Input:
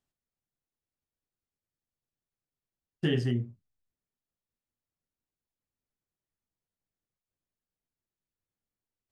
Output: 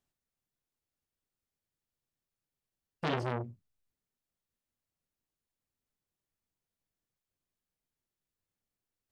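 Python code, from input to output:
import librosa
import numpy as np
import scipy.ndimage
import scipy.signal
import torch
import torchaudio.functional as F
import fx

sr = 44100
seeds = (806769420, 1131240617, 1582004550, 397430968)

y = fx.transformer_sat(x, sr, knee_hz=1600.0)
y = y * librosa.db_to_amplitude(1.0)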